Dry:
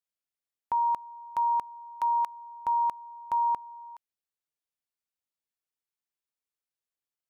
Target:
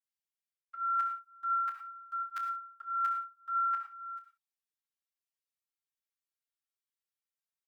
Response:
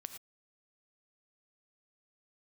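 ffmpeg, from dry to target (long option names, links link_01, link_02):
-filter_complex "[0:a]highpass=660,agate=range=-8dB:threshold=-42dB:ratio=16:detection=peak,aecho=1:1:4.3:0.81,areverse,acompressor=threshold=-36dB:ratio=16,areverse,asetrate=41895,aresample=44100,asoftclip=type=hard:threshold=-26dB,asetrate=49501,aresample=44100,atempo=0.890899,afreqshift=360,aecho=1:1:27|66:0.335|0.237[link_01];[1:a]atrim=start_sample=2205[link_02];[link_01][link_02]afir=irnorm=-1:irlink=0,asplit=2[link_03][link_04];[link_04]adelay=9.7,afreqshift=1.9[link_05];[link_03][link_05]amix=inputs=2:normalize=1,volume=8.5dB"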